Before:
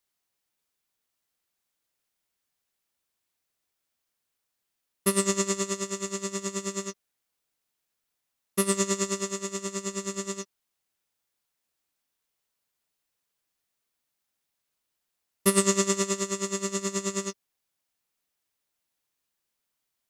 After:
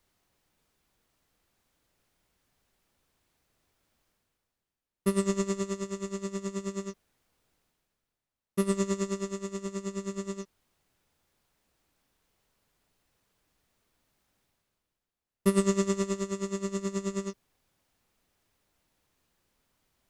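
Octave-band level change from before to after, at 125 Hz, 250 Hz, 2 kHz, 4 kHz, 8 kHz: +1.0, +0.5, -7.5, -10.0, -12.0 dB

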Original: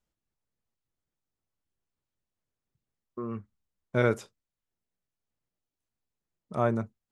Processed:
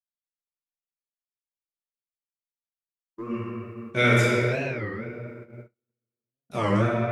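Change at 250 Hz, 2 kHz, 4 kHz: +7.0, +12.5, +16.5 dB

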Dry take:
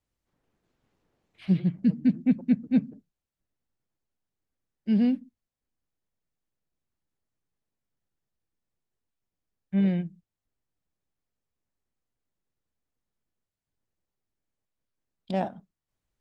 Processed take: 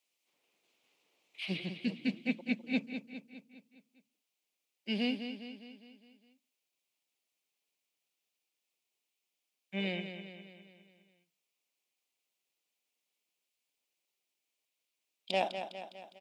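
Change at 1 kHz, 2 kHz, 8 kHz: -1.0 dB, +7.5 dB, n/a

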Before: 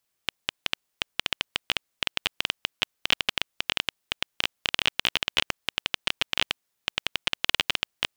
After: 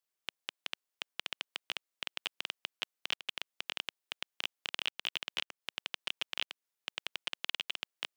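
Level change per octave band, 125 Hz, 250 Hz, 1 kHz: under -20 dB, -15.5 dB, -12.0 dB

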